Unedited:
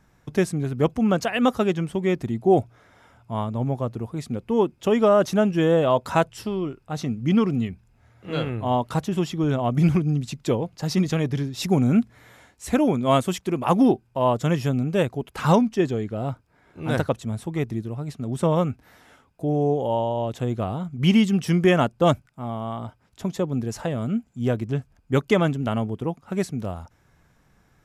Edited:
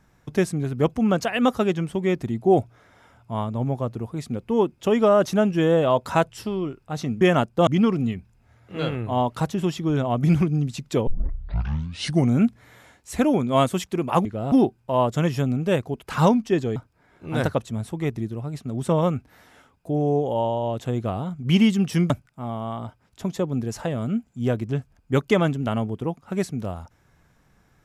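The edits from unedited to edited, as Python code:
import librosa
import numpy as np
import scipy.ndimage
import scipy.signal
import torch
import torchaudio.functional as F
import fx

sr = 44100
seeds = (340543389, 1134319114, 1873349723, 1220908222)

y = fx.edit(x, sr, fx.tape_start(start_s=10.61, length_s=1.26),
    fx.move(start_s=16.03, length_s=0.27, to_s=13.79),
    fx.move(start_s=21.64, length_s=0.46, to_s=7.21), tone=tone)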